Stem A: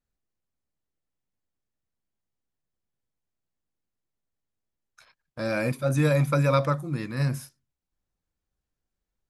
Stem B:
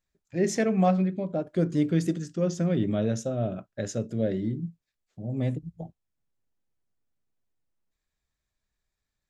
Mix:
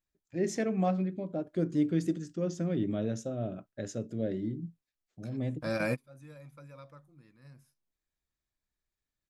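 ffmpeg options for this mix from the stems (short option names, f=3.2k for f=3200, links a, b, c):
-filter_complex "[0:a]adelay=250,volume=-3.5dB[a];[1:a]equalizer=f=310:t=o:w=0.53:g=5,volume=-7dB,asplit=2[b][c];[c]apad=whole_len=421083[d];[a][d]sidechaingate=range=-25dB:threshold=-53dB:ratio=16:detection=peak[e];[e][b]amix=inputs=2:normalize=0"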